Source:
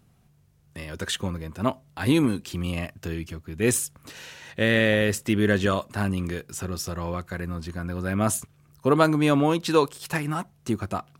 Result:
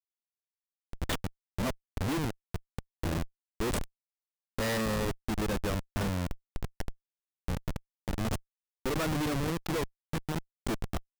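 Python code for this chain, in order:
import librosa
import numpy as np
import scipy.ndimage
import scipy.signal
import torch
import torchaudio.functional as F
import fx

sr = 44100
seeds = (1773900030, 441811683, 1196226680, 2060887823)

y = fx.transient(x, sr, attack_db=3, sustain_db=-8)
y = fx.chopper(y, sr, hz=0.67, depth_pct=60, duty_pct=20)
y = fx.schmitt(y, sr, flips_db=-30.0)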